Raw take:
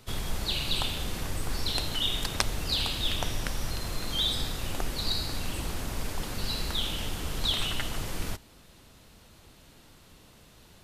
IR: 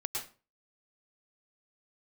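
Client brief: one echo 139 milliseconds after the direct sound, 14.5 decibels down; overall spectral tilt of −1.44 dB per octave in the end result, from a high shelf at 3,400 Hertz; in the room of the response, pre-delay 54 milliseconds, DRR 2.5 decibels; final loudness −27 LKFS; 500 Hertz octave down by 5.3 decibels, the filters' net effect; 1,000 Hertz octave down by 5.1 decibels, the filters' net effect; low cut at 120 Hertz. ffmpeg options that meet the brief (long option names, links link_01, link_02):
-filter_complex "[0:a]highpass=120,equalizer=frequency=500:width_type=o:gain=-5.5,equalizer=frequency=1000:width_type=o:gain=-6,highshelf=frequency=3400:gain=8.5,aecho=1:1:139:0.188,asplit=2[link_01][link_02];[1:a]atrim=start_sample=2205,adelay=54[link_03];[link_02][link_03]afir=irnorm=-1:irlink=0,volume=-5.5dB[link_04];[link_01][link_04]amix=inputs=2:normalize=0,volume=-1.5dB"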